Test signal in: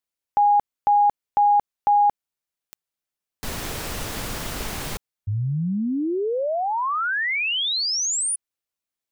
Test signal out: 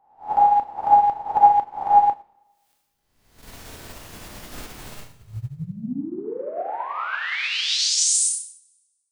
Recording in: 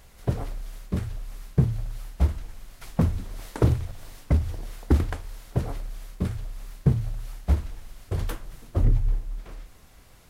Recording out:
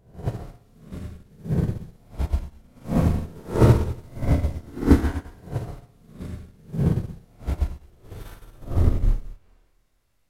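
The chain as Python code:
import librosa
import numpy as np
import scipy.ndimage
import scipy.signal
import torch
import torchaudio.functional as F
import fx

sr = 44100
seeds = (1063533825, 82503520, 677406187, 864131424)

y = fx.spec_swells(x, sr, rise_s=1.02)
y = fx.rev_schroeder(y, sr, rt60_s=1.3, comb_ms=25, drr_db=-2.0)
y = fx.upward_expand(y, sr, threshold_db=-29.0, expansion=2.5)
y = y * librosa.db_to_amplitude(2.5)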